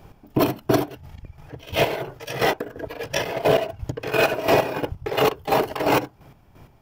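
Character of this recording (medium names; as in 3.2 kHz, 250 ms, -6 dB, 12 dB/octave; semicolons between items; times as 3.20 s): chopped level 2.9 Hz, depth 65%, duty 35%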